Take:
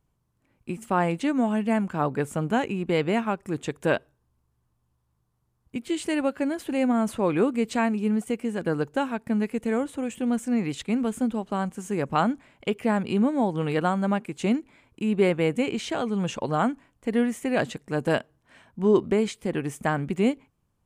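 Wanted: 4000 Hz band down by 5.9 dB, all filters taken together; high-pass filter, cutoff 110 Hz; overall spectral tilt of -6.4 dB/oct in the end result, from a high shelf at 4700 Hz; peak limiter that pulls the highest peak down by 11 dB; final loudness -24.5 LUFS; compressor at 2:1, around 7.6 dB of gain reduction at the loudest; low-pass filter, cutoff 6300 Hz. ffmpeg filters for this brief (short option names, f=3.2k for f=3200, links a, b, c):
-af "highpass=110,lowpass=6.3k,equalizer=f=4k:t=o:g=-5.5,highshelf=f=4.7k:g=-7,acompressor=threshold=-29dB:ratio=2,volume=11.5dB,alimiter=limit=-15dB:level=0:latency=1"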